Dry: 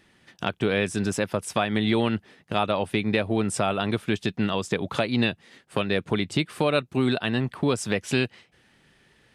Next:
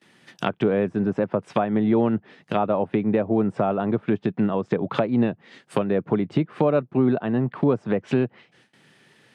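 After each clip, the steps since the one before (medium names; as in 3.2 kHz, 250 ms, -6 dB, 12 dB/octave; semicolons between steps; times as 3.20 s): gate with hold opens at -50 dBFS; high-pass 120 Hz 24 dB/octave; low-pass that closes with the level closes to 940 Hz, closed at -23 dBFS; trim +4 dB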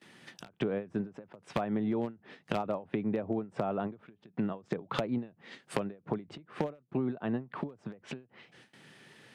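one-sided wavefolder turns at -12 dBFS; compression, threshold -29 dBFS, peak gain reduction 13.5 dB; endings held to a fixed fall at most 210 dB/s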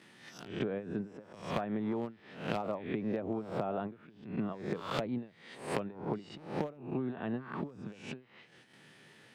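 reverse spectral sustain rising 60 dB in 0.51 s; trim -4 dB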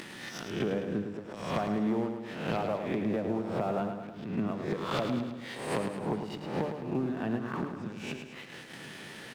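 upward compressor, threshold -38 dBFS; waveshaping leveller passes 2; on a send: feedback delay 107 ms, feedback 55%, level -7 dB; on the sum: trim -3.5 dB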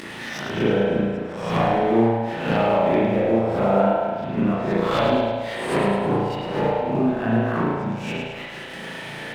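spring tank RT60 1.1 s, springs 35 ms, chirp 40 ms, DRR -6 dB; trim +5 dB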